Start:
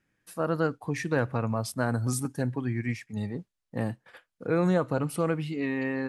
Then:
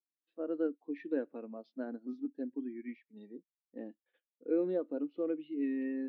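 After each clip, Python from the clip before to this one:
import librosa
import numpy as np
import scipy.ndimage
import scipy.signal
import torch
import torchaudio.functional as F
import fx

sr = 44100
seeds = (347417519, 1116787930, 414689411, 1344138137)

y = scipy.signal.sosfilt(scipy.signal.ellip(3, 1.0, 40, [280.0, 3600.0], 'bandpass', fs=sr, output='sos'), x)
y = fx.peak_eq(y, sr, hz=1100.0, db=-14.5, octaves=2.0)
y = fx.spectral_expand(y, sr, expansion=1.5)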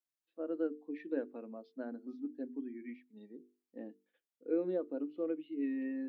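y = fx.hum_notches(x, sr, base_hz=50, count=9)
y = y * 10.0 ** (-1.5 / 20.0)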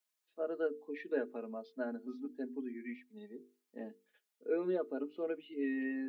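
y = fx.highpass(x, sr, hz=490.0, slope=6)
y = y + 0.7 * np.pad(y, (int(4.8 * sr / 1000.0), 0))[:len(y)]
y = y * 10.0 ** (5.5 / 20.0)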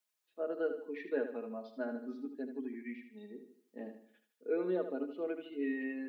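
y = fx.echo_feedback(x, sr, ms=77, feedback_pct=42, wet_db=-9.0)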